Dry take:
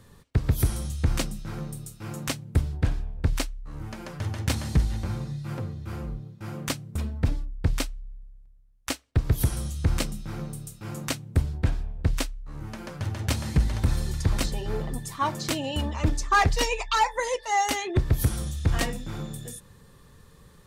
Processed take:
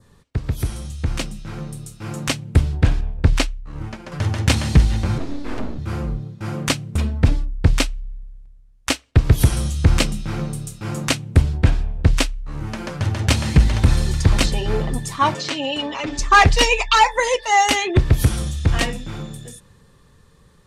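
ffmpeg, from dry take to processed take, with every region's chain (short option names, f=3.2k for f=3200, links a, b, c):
-filter_complex "[0:a]asettb=1/sr,asplit=3[a][b][c];[a]atrim=end=3.014[d];[b]atrim=start=3.01:end=4.12,asetpts=PTS-STARTPTS,afade=t=in:d=0.004:c=qsin,afade=t=out:st=1.106:d=0.004:c=qsin,agate=range=-33dB:threshold=-33dB:ratio=3:release=100:detection=peak,highshelf=f=8.5k:g=-6[e];[c]atrim=start=4.116[f];[d][e]acrossfade=d=0.004:c1=hsin:c2=qsin[g];[g][f]acrossfade=d=0.004:c1=qsin:c2=hsin,asettb=1/sr,asplit=3[h][i][j];[h]atrim=end=5.184[k];[i]atrim=start=5.18:end=5.79,asetpts=PTS-STARTPTS,afade=t=in:d=0.004:c=qsin,afade=t=out:st=0.606:d=0.004:c=qsin,highshelf=f=7.1k:g=-9,aeval=exprs='abs(val(0))':c=same[l];[j]atrim=start=5.786[m];[k][l]acrossfade=d=0.004:c1=hsin:c2=qsin[n];[n][m]acrossfade=d=0.004:c1=qsin:c2=hsin,asettb=1/sr,asplit=3[o][p][q];[o]atrim=end=15.344[r];[p]atrim=start=15.34:end=16.19,asetpts=PTS-STARTPTS,afade=t=in:d=0.004:c=qsin,afade=t=out:st=0.846:d=0.004:c=qsin,acrossover=split=230 7400:gain=0.126 1 0.0794[s][t][u];[s][t][u]amix=inputs=3:normalize=0,acompressor=threshold=-34dB:ratio=3:attack=3.2:release=140:knee=1:detection=peak,aecho=1:1:7.2:0.72,atrim=end_sample=37485[v];[q]atrim=start=16.186[w];[r][v]acrossfade=d=0.004:c1=hsin:c2=qsin[x];[x][w]acrossfade=d=0.004:c1=qsin:c2=hsin,lowpass=10k,adynamicequalizer=threshold=0.00501:dfrequency=2700:dqfactor=1.8:tfrequency=2700:tqfactor=1.8:attack=5:release=100:ratio=0.375:range=2.5:mode=boostabove:tftype=bell,dynaudnorm=f=190:g=21:m=10dB"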